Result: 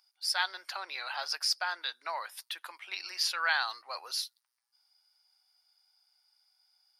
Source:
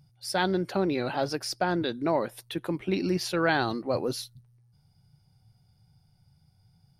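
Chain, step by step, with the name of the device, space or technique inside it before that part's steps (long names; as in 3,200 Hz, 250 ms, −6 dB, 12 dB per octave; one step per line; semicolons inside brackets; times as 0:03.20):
headphones lying on a table (high-pass filter 1,000 Hz 24 dB per octave; parametric band 4,900 Hz +7 dB 0.31 octaves)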